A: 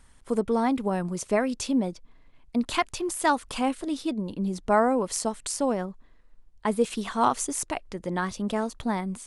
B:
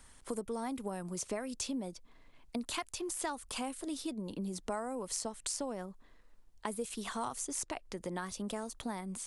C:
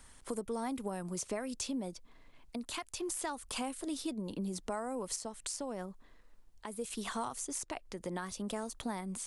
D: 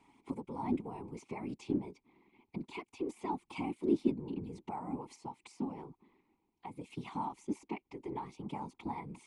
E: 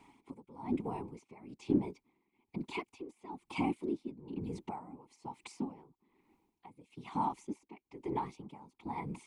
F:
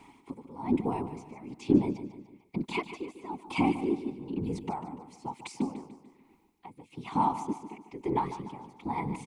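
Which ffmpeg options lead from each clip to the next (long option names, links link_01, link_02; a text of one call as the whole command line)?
ffmpeg -i in.wav -filter_complex "[0:a]bass=frequency=250:gain=-4,treble=frequency=4000:gain=4,acrossover=split=120|7900[link_01][link_02][link_03];[link_01]acompressor=threshold=-54dB:ratio=4[link_04];[link_02]acompressor=threshold=-38dB:ratio=4[link_05];[link_03]acompressor=threshold=-46dB:ratio=4[link_06];[link_04][link_05][link_06]amix=inputs=3:normalize=0" out.wav
ffmpeg -i in.wav -af "alimiter=level_in=2.5dB:limit=-24dB:level=0:latency=1:release=261,volume=-2.5dB,volume=1dB" out.wav
ffmpeg -i in.wav -filter_complex "[0:a]asplit=3[link_01][link_02][link_03];[link_01]bandpass=frequency=300:width_type=q:width=8,volume=0dB[link_04];[link_02]bandpass=frequency=870:width_type=q:width=8,volume=-6dB[link_05];[link_03]bandpass=frequency=2240:width_type=q:width=8,volume=-9dB[link_06];[link_04][link_05][link_06]amix=inputs=3:normalize=0,afftfilt=real='hypot(re,im)*cos(2*PI*random(0))':imag='hypot(re,im)*sin(2*PI*random(1))':win_size=512:overlap=0.75,volume=16.5dB" out.wav
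ffmpeg -i in.wav -af "aeval=exprs='val(0)*pow(10,-18*(0.5-0.5*cos(2*PI*1.1*n/s))/20)':channel_layout=same,volume=5.5dB" out.wav
ffmpeg -i in.wav -af "aecho=1:1:147|294|441|588:0.251|0.111|0.0486|0.0214,volume=7dB" out.wav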